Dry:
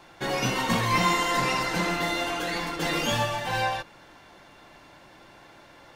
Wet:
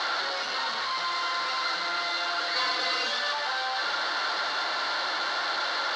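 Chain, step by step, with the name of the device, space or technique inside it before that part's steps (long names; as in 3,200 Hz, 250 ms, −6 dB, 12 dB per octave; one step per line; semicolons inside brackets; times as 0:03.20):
home computer beeper (sign of each sample alone; loudspeaker in its box 690–4,700 Hz, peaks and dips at 1,400 Hz +7 dB, 2,500 Hz −9 dB, 4,300 Hz +9 dB)
0:02.55–0:03.33: comb filter 4 ms, depth 92%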